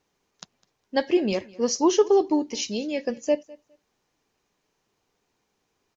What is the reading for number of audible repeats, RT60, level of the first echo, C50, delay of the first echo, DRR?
1, no reverb, -23.0 dB, no reverb, 205 ms, no reverb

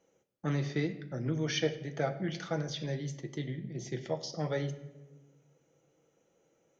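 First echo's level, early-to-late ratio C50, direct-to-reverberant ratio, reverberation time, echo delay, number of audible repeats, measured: no echo, 13.0 dB, 6.0 dB, 1.1 s, no echo, no echo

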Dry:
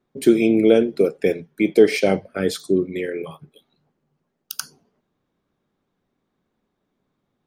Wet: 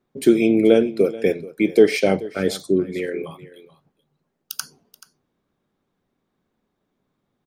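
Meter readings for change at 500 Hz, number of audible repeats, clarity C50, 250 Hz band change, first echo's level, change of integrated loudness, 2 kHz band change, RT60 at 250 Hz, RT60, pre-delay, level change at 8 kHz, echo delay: 0.0 dB, 1, no reverb, 0.0 dB, -18.5 dB, 0.0 dB, 0.0 dB, no reverb, no reverb, no reverb, 0.0 dB, 431 ms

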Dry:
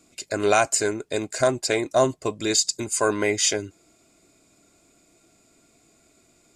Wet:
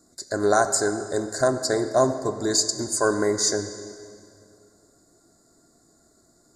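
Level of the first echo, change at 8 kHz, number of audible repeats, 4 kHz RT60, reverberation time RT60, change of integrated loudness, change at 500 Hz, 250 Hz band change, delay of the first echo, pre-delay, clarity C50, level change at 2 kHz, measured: no echo, -0.5 dB, no echo, 2.0 s, 2.3 s, -0.5 dB, +0.5 dB, +1.0 dB, no echo, 3 ms, 10.0 dB, -2.5 dB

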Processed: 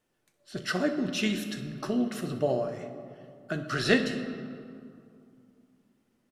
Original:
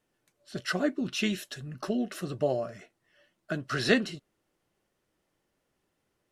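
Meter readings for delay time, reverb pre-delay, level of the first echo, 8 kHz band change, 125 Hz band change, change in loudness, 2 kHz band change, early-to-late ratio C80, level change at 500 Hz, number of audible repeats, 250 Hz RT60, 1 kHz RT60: 63 ms, 8 ms, -15.5 dB, +0.5 dB, +1.5 dB, +1.0 dB, +1.0 dB, 9.5 dB, +1.0 dB, 1, 3.2 s, 2.6 s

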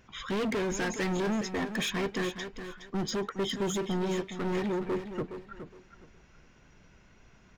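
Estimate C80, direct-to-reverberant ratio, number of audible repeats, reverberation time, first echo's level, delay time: no reverb, no reverb, 2, no reverb, -10.0 dB, 416 ms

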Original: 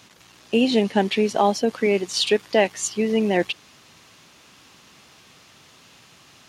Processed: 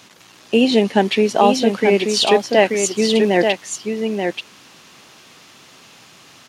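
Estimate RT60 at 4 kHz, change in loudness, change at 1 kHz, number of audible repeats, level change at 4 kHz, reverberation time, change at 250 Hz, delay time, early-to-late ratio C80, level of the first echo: no reverb, +4.5 dB, +6.0 dB, 1, +5.5 dB, no reverb, +5.0 dB, 883 ms, no reverb, -5.5 dB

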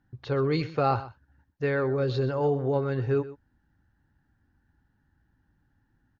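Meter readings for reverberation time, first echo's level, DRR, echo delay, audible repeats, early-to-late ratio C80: no reverb, -16.0 dB, no reverb, 125 ms, 1, no reverb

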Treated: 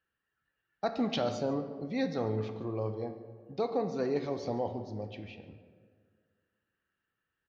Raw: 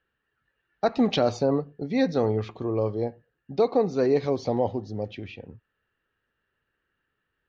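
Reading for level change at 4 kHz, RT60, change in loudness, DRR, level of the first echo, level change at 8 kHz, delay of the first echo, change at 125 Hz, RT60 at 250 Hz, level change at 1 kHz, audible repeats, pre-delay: -6.5 dB, 1.8 s, -8.5 dB, 7.5 dB, -19.5 dB, no reading, 143 ms, -7.0 dB, 2.0 s, -7.0 dB, 1, 4 ms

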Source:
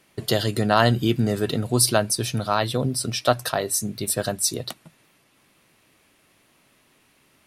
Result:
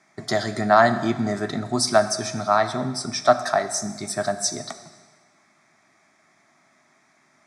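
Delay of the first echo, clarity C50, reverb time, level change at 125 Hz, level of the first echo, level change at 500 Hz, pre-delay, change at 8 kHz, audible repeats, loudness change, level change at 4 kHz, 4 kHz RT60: no echo, 12.0 dB, 1.4 s, -7.5 dB, no echo, +2.5 dB, 7 ms, -3.0 dB, no echo, 0.0 dB, -2.5 dB, 1.4 s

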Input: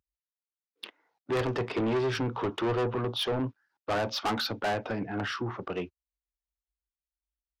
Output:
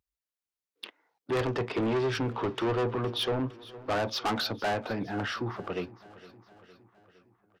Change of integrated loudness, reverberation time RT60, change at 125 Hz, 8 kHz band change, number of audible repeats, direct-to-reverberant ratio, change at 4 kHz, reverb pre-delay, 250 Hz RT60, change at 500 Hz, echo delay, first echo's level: 0.0 dB, no reverb, 0.0 dB, 0.0 dB, 4, no reverb, 0.0 dB, no reverb, no reverb, 0.0 dB, 461 ms, -19.0 dB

